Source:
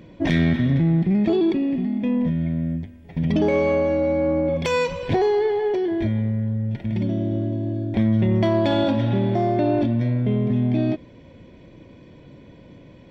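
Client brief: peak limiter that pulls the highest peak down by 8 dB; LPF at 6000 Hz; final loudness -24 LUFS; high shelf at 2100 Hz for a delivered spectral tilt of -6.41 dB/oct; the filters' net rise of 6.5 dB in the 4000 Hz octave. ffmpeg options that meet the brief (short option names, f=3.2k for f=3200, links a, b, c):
-af "lowpass=6k,highshelf=f=2.1k:g=4.5,equalizer=f=4k:t=o:g=4.5,volume=-1.5dB,alimiter=limit=-15.5dB:level=0:latency=1"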